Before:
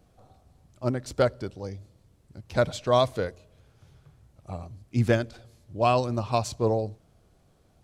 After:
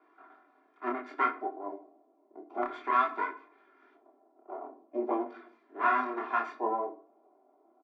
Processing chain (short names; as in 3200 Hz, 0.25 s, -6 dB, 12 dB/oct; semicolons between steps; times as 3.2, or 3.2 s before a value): minimum comb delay 0.86 ms; steep high-pass 270 Hz 48 dB/oct; high shelf 7000 Hz -9 dB; comb 2.9 ms, depth 90%; in parallel at +3 dB: compressor, threshold -38 dBFS, peak gain reduction 18 dB; on the sum: LFO low-pass square 0.38 Hz 720–1700 Hz; chorus 0.57 Hz, delay 20 ms, depth 7.9 ms; reverb RT60 0.50 s, pre-delay 5 ms, DRR 8 dB; gain -5.5 dB